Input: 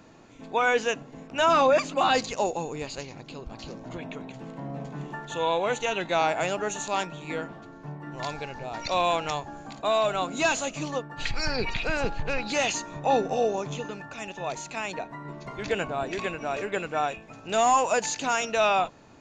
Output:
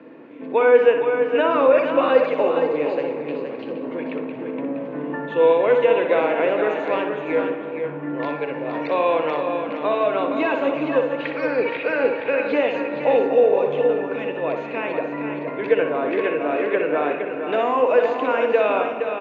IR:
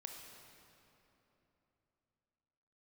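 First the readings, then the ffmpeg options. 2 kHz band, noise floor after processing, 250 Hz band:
+3.5 dB, -31 dBFS, +9.0 dB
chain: -filter_complex "[0:a]acrossover=split=420|1400[a][b][c];[a]acompressor=threshold=-39dB:ratio=4[d];[b]acompressor=threshold=-26dB:ratio=4[e];[c]acompressor=threshold=-33dB:ratio=4[f];[d][e][f]amix=inputs=3:normalize=0,highpass=f=180:w=0.5412,highpass=f=180:w=1.3066,equalizer=f=190:t=q:w=4:g=-7,equalizer=f=290:t=q:w=4:g=7,equalizer=f=490:t=q:w=4:g=9,equalizer=f=770:t=q:w=4:g=-8,equalizer=f=1.3k:t=q:w=4:g=-5,lowpass=f=2.5k:w=0.5412,lowpass=f=2.5k:w=1.3066,aecho=1:1:468:0.447,asplit=2[g][h];[1:a]atrim=start_sample=2205,highshelf=f=4.5k:g=-8.5,adelay=61[i];[h][i]afir=irnorm=-1:irlink=0,volume=0dB[j];[g][j]amix=inputs=2:normalize=0,volume=7dB"

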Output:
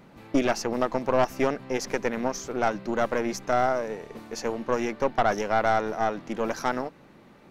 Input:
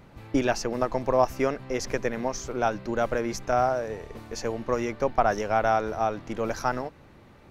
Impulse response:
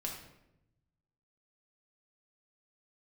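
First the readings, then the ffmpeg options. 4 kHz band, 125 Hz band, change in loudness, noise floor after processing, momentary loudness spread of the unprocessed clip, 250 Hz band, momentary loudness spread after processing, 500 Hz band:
+1.5 dB, -3.0 dB, 0.0 dB, -53 dBFS, 8 LU, +1.5 dB, 7 LU, 0.0 dB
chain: -af "lowshelf=f=130:t=q:w=1.5:g=-9,aeval=exprs='(tanh(7.94*val(0)+0.65)-tanh(0.65))/7.94':c=same,volume=3.5dB"

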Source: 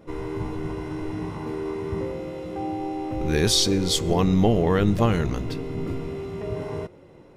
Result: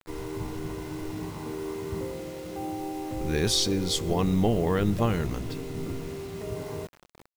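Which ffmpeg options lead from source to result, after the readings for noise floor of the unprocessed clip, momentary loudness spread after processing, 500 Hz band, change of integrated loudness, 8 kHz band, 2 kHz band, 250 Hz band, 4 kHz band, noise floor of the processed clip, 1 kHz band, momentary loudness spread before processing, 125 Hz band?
-49 dBFS, 13 LU, -4.5 dB, -4.5 dB, -4.0 dB, -4.0 dB, -4.5 dB, -4.5 dB, -58 dBFS, -4.5 dB, 13 LU, -4.5 dB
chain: -af "acrusher=bits=6:mix=0:aa=0.000001,volume=-4.5dB"

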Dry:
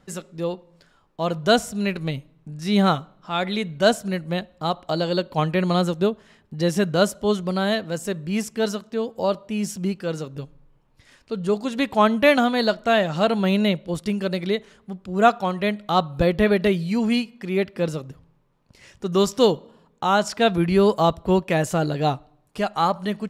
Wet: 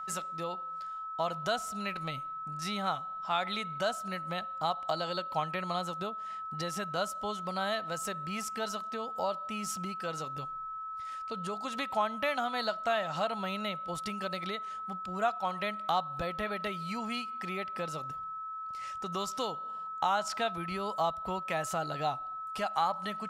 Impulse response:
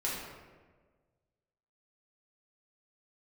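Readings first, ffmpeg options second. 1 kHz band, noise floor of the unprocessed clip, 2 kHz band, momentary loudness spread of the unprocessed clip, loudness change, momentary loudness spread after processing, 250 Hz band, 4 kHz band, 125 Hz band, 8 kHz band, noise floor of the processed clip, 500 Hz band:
-6.5 dB, -61 dBFS, -10.0 dB, 11 LU, -12.0 dB, 8 LU, -18.5 dB, -10.0 dB, -17.0 dB, -7.0 dB, -40 dBFS, -15.0 dB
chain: -af "acompressor=threshold=-27dB:ratio=4,aeval=exprs='val(0)+0.0141*sin(2*PI*1300*n/s)':c=same,lowshelf=f=550:t=q:w=1.5:g=-8.5,volume=-1.5dB"

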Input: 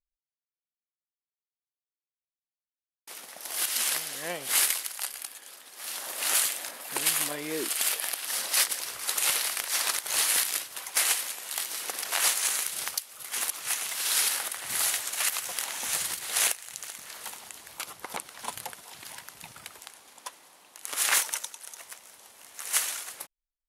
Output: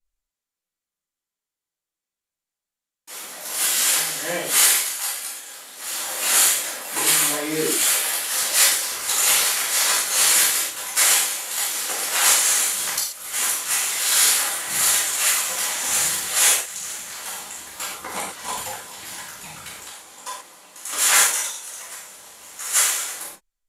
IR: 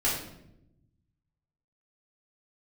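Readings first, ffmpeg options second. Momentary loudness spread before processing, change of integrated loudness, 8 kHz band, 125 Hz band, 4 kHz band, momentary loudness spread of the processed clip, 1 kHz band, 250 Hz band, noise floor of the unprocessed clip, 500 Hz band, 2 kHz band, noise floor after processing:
19 LU, +9.0 dB, +10.0 dB, n/a, +8.0 dB, 19 LU, +9.0 dB, +9.5 dB, under -85 dBFS, +9.0 dB, +8.5 dB, under -85 dBFS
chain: -filter_complex "[0:a]equalizer=f=7.3k:t=o:w=0.29:g=6.5[a];[1:a]atrim=start_sample=2205,atrim=end_sample=4410,asetrate=30870,aresample=44100[b];[a][b]afir=irnorm=-1:irlink=0,volume=-3.5dB"

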